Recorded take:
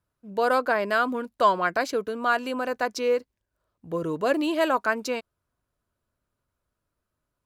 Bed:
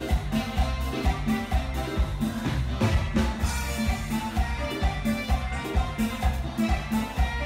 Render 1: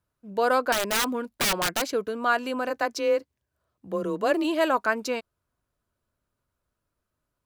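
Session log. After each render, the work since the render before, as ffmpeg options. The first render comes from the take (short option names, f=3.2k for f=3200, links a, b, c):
-filter_complex "[0:a]asettb=1/sr,asplit=3[a][b][c];[a]atrim=end=0.724[d];[b]atrim=start=0.72:end=1.84,asetpts=PTS-STARTPTS,afade=t=in:d=0.004:c=qsin,afade=t=out:st=1.116:d=0.004:c=qsin,aeval=exprs='(mod(8.41*val(0)+1,2)-1)/8.41':c=same[e];[c]atrim=start=1.836[f];[d][e]acrossfade=d=0.004:c1=hsin:c2=qsin[g];[g][f]acrossfade=d=0.004:c1=qsin:c2=hsin,asplit=3[h][i][j];[h]afade=t=out:st=2.69:d=0.02[k];[i]afreqshift=22,afade=t=in:st=2.69:d=0.02,afade=t=out:st=4.43:d=0.02[l];[j]afade=t=in:st=4.43:d=0.02[m];[k][l][m]amix=inputs=3:normalize=0"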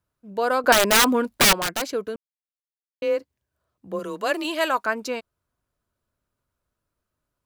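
-filter_complex "[0:a]asettb=1/sr,asplit=3[a][b][c];[a]atrim=end=3.994[d];[b]atrim=start=3.99:end=4.85,asetpts=PTS-STARTPTS,afade=t=in:d=0.004:c=qsin,afade=t=out:st=0.856:d=0.004:c=qsin,tiltshelf=f=810:g=-6[e];[c]atrim=start=4.846[f];[d][e]acrossfade=d=0.004:c1=hsin:c2=qsin[g];[g][f]acrossfade=d=0.004:c1=qsin:c2=hsin,asplit=5[h][i][j][k][l];[h]atrim=end=0.642[m];[i]atrim=start=0.638:end=1.532,asetpts=PTS-STARTPTS,volume=8.5dB[n];[j]atrim=start=1.528:end=2.16,asetpts=PTS-STARTPTS,afade=t=out:st=0.628:d=0.004:c=hsin[o];[k]atrim=start=2.16:end=3.02,asetpts=PTS-STARTPTS,volume=0[p];[l]atrim=start=3.02,asetpts=PTS-STARTPTS,afade=t=in:d=0.004:c=hsin[q];[m][n]acrossfade=d=0.004:c1=hsin:c2=hsin[r];[o][p][q]concat=n=3:v=0:a=1[s];[r][s]acrossfade=d=0.004:c1=hsin:c2=hsin"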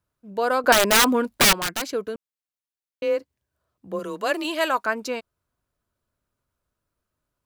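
-filter_complex "[0:a]asettb=1/sr,asplit=3[a][b][c];[a]atrim=end=1.504[d];[b]atrim=start=1.5:end=1.93,asetpts=PTS-STARTPTS,afade=t=in:d=0.004:c=qsin,afade=t=out:st=0.426:d=0.004:c=qsin,equalizer=f=580:w=1.5:g=-5.5[e];[c]atrim=start=1.926[f];[d][e]acrossfade=d=0.004:c1=hsin:c2=qsin[g];[g][f]acrossfade=d=0.004:c1=qsin:c2=hsin"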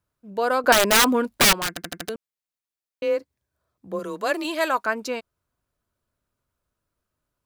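-filter_complex "[0:a]asettb=1/sr,asplit=3[a][b][c];[a]atrim=end=3.144[d];[b]atrim=start=3.14:end=4.72,asetpts=PTS-STARTPTS,afade=t=in:d=0.004:c=qsin,afade=t=out:st=1.576:d=0.004:c=qsin,bandreject=f=2.9k:w=12[e];[c]atrim=start=4.716[f];[d][e]acrossfade=d=0.004:c1=hsin:c2=qsin[g];[g][f]acrossfade=d=0.004:c1=qsin:c2=hsin,asplit=6[h][i][j][k][l][m];[h]atrim=end=1.772[n];[i]atrim=start=1.688:end=1.772[o];[j]atrim=start=1.688:end=1.772[p];[k]atrim=start=1.688:end=1.772[q];[l]atrim=start=1.688:end=1.772[r];[m]atrim=start=2.088[s];[n][o]acrossfade=d=0.004:c1=hsin:c2=hsin[t];[t][p]acrossfade=d=0.004:c1=hsin:c2=hsin[u];[u][q]acrossfade=d=0.004:c1=hsin:c2=hsin[v];[v][r]acrossfade=d=0.004:c1=hsin:c2=hsin[w];[w][s]acrossfade=d=0.004:c1=hsin:c2=hsin"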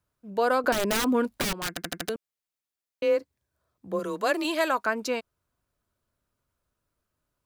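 -filter_complex "[0:a]acrossover=split=450[a][b];[b]acompressor=threshold=-21dB:ratio=10[c];[a][c]amix=inputs=2:normalize=0,alimiter=limit=-12dB:level=0:latency=1:release=453"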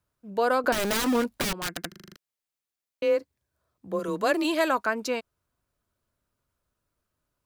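-filter_complex "[0:a]asettb=1/sr,asplit=3[a][b][c];[a]atrim=end=0.754[d];[b]atrim=start=0.75:end=1.24,asetpts=PTS-STARTPTS,afade=t=in:d=0.004:c=qsin,afade=t=out:st=0.486:d=0.004:c=qsin,aeval=exprs='val(0)*gte(abs(val(0)),0.0447)':c=same[e];[c]atrim=start=1.236[f];[d][e]acrossfade=d=0.004:c1=hsin:c2=qsin[g];[g][f]acrossfade=d=0.004:c1=qsin:c2=hsin,asettb=1/sr,asplit=3[h][i][j];[h]atrim=end=4.084[k];[i]atrim=start=4.08:end=4.82,asetpts=PTS-STARTPTS,afade=t=in:d=0.004:c=qsin,afade=t=out:st=0.736:d=0.004:c=qsin,lowshelf=f=240:g=9.5[l];[j]atrim=start=4.816[m];[k][l]acrossfade=d=0.004:c1=hsin:c2=qsin[n];[n][m]acrossfade=d=0.004:c1=qsin:c2=hsin,asplit=8[o][p][q][r][s][t][u][v];[o]atrim=end=1.922[w];[p]atrim=start=1.878:end=1.922[x];[q]atrim=start=1.878:end=1.922[y];[r]atrim=start=1.878:end=1.922[z];[s]atrim=start=1.878:end=1.922[aa];[t]atrim=start=1.878:end=1.922[ab];[u]atrim=start=1.878:end=1.922[ac];[v]atrim=start=2.158[ad];[w][x]acrossfade=d=0.004:c1=hsin:c2=hsin[ae];[ae][y]acrossfade=d=0.004:c1=hsin:c2=hsin[af];[af][z]acrossfade=d=0.004:c1=hsin:c2=hsin[ag];[ag][aa]acrossfade=d=0.004:c1=hsin:c2=hsin[ah];[ah][ab]acrossfade=d=0.004:c1=hsin:c2=hsin[ai];[ai][ac]acrossfade=d=0.004:c1=hsin:c2=hsin[aj];[aj][ad]acrossfade=d=0.004:c1=hsin:c2=hsin"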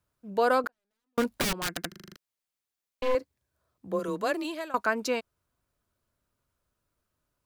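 -filter_complex "[0:a]asettb=1/sr,asplit=3[a][b][c];[a]atrim=end=0.674[d];[b]atrim=start=0.67:end=1.18,asetpts=PTS-STARTPTS,afade=t=in:d=0.004:c=qsin,afade=t=out:st=0.506:d=0.004:c=qsin,agate=range=-58dB:threshold=-16dB:ratio=16:release=100:detection=peak[e];[c]atrim=start=1.176[f];[d][e]acrossfade=d=0.004:c1=hsin:c2=qsin[g];[g][f]acrossfade=d=0.004:c1=qsin:c2=hsin,asettb=1/sr,asplit=3[h][i][j];[h]atrim=end=2.024[k];[i]atrim=start=2.02:end=3.15,asetpts=PTS-STARTPTS,afade=t=in:d=0.004:c=qsin,afade=t=out:st=1.126:d=0.004:c=qsin,aeval=exprs='clip(val(0),-1,0.0119)':c=same[l];[j]atrim=start=3.146[m];[k][l]acrossfade=d=0.004:c1=hsin:c2=qsin[n];[n][m]acrossfade=d=0.004:c1=qsin:c2=hsin,asplit=2[o][p];[o]atrim=end=4.74,asetpts=PTS-STARTPTS,afade=t=out:st=3.91:d=0.83:silence=0.105925[q];[p]atrim=start=4.74,asetpts=PTS-STARTPTS,afade=t=in:d=0.004:c=hsin:silence=0.105925[r];[q][r]concat=n=2:v=0:a=1"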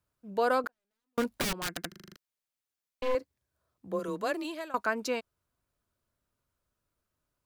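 -af "volume=-3dB"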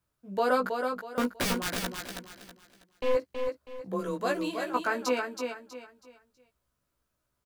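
-filter_complex "[0:a]asplit=2[a][b];[b]adelay=16,volume=-2.5dB[c];[a][c]amix=inputs=2:normalize=0,aecho=1:1:323|646|969|1292:0.531|0.165|0.051|0.0158"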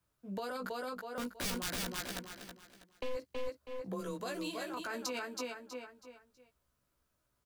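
-filter_complex "[0:a]alimiter=limit=-24dB:level=0:latency=1:release=18,acrossover=split=130|3000[a][b][c];[b]acompressor=threshold=-39dB:ratio=4[d];[a][d][c]amix=inputs=3:normalize=0"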